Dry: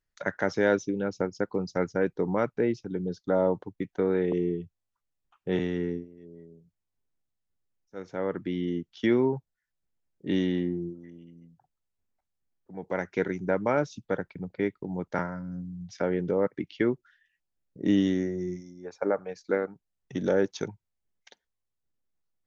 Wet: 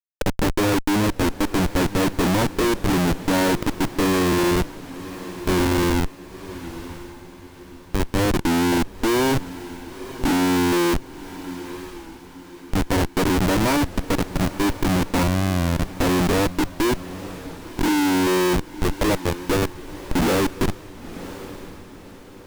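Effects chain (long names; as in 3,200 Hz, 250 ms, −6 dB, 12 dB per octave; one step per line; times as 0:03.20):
adaptive Wiener filter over 41 samples
hollow resonant body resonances 310/940/2,300 Hz, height 13 dB, ringing for 20 ms
comparator with hysteresis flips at −31.5 dBFS
on a send: feedback delay with all-pass diffusion 1,014 ms, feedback 41%, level −14.5 dB
on the sum: wow of a warped record 33 1/3 rpm, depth 100 cents
level +4 dB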